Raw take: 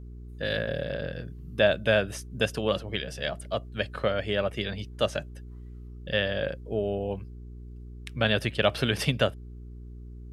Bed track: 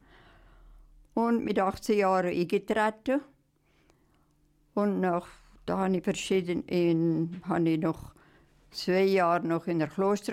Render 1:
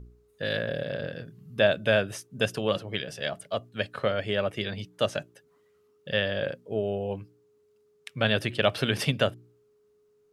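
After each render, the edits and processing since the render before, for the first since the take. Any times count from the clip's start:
hum removal 60 Hz, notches 6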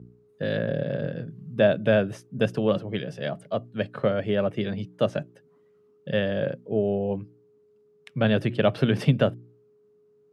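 high-pass filter 130 Hz 24 dB per octave
spectral tilt −3.5 dB per octave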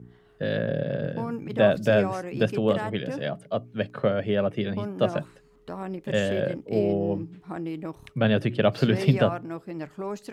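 mix in bed track −6.5 dB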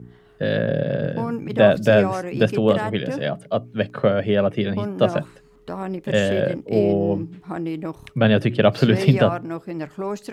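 level +5.5 dB
brickwall limiter −3 dBFS, peak gain reduction 1.5 dB

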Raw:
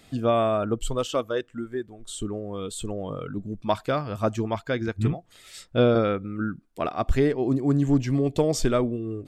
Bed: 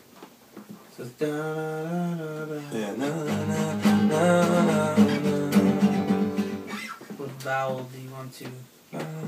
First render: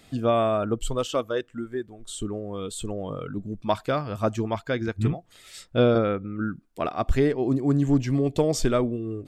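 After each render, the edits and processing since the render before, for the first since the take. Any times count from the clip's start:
0:05.98–0:06.43: high-frequency loss of the air 190 metres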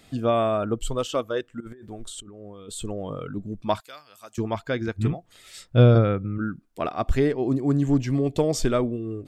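0:01.60–0:02.69: compressor whose output falls as the input rises −41 dBFS
0:03.80–0:04.38: first difference
0:05.69–0:06.38: parametric band 120 Hz +12 dB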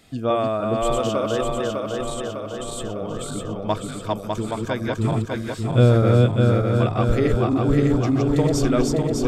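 feedback delay that plays each chunk backwards 301 ms, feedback 77%, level −1.5 dB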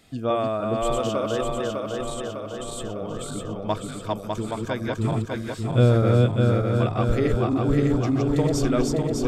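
level −2.5 dB

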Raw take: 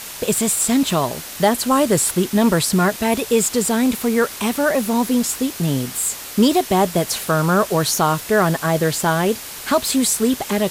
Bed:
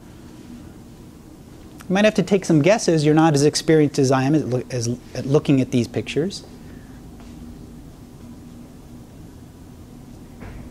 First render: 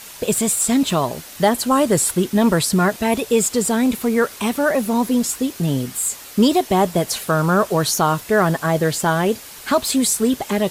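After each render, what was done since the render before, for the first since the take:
broadband denoise 6 dB, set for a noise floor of −33 dBFS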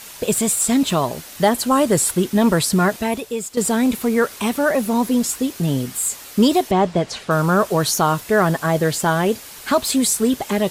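0:02.95–0:03.57: fade out quadratic, to −11 dB
0:06.71–0:07.31: high-frequency loss of the air 110 metres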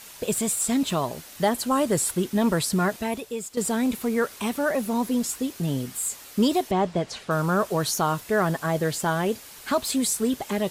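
level −6.5 dB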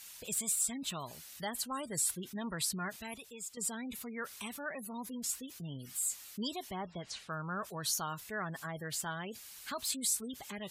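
gate on every frequency bin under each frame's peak −30 dB strong
guitar amp tone stack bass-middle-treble 5-5-5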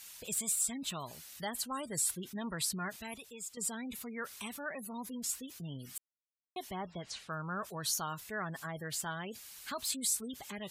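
0:05.98–0:06.56: silence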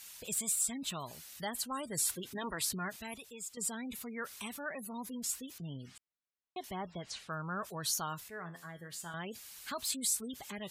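0:01.98–0:02.74: ceiling on every frequency bin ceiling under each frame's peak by 13 dB
0:05.58–0:06.64: high-frequency loss of the air 110 metres
0:08.28–0:09.14: tuned comb filter 86 Hz, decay 0.36 s, mix 70%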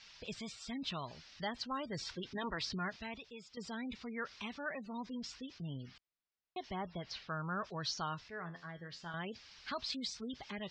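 elliptic low-pass filter 5,300 Hz, stop band 60 dB
low-shelf EQ 72 Hz +7.5 dB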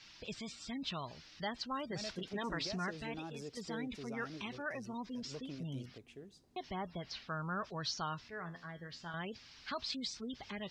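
mix in bed −31 dB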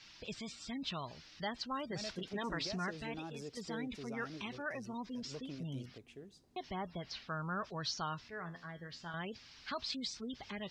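no processing that can be heard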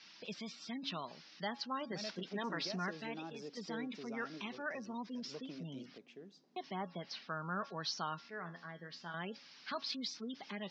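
elliptic band-pass filter 180–5,700 Hz, stop band 40 dB
hum removal 277.5 Hz, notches 6

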